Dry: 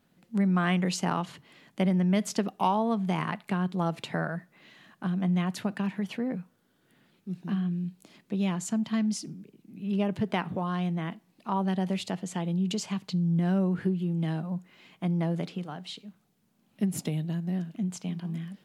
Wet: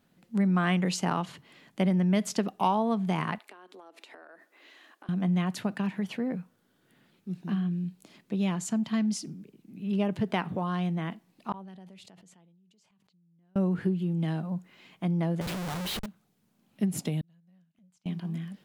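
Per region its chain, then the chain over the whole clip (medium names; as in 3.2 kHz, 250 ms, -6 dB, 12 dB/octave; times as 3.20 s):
3.38–5.09 s: steep high-pass 280 Hz 48 dB/octave + compression 12:1, threshold -46 dBFS
11.52–13.56 s: inverted gate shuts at -32 dBFS, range -40 dB + decay stretcher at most 20 dB/s
15.41–16.06 s: comb 5.6 ms, depth 90% + Schmitt trigger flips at -46 dBFS
17.21–18.06 s: peaking EQ 410 Hz -13.5 dB 1.4 oct + inverted gate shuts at -39 dBFS, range -27 dB + transformer saturation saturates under 730 Hz
whole clip: none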